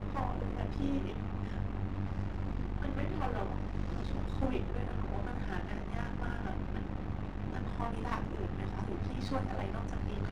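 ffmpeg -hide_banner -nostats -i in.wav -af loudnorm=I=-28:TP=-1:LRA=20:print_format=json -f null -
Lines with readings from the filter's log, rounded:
"input_i" : "-38.0",
"input_tp" : "-18.3",
"input_lra" : "1.3",
"input_thresh" : "-48.0",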